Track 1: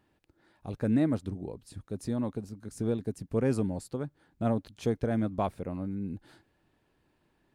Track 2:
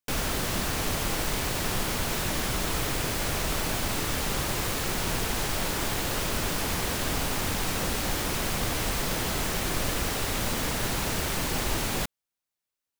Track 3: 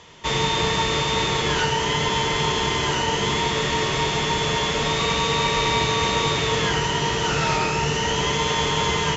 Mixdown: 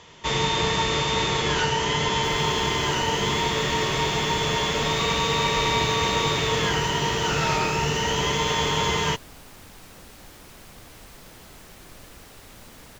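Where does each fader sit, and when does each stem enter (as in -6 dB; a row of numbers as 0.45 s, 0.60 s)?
mute, -17.5 dB, -1.5 dB; mute, 2.15 s, 0.00 s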